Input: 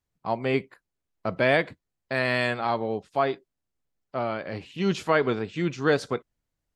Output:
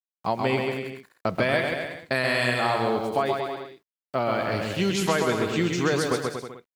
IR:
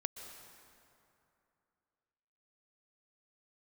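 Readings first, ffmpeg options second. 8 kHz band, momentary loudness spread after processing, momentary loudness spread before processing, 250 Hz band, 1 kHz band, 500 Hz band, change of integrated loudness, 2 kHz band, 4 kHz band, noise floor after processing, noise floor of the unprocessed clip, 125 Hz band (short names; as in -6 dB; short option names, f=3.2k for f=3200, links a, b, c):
n/a, 10 LU, 11 LU, +2.0 dB, +2.5 dB, +1.0 dB, +1.5 dB, +1.5 dB, +5.0 dB, under -85 dBFS, -84 dBFS, +2.5 dB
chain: -af "acompressor=threshold=-27dB:ratio=6,aemphasis=mode=production:type=50fm,aeval=exprs='val(0)*gte(abs(val(0)),0.00211)':c=same,aecho=1:1:130|234|317.2|383.8|437:0.631|0.398|0.251|0.158|0.1,volume=6dB"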